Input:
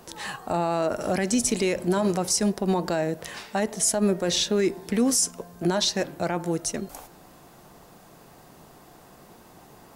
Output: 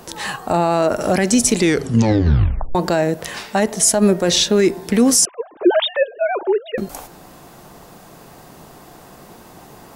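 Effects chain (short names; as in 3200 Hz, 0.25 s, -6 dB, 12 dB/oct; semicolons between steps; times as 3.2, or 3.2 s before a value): 1.54 tape stop 1.21 s; 5.25–6.78 sine-wave speech; gain +8.5 dB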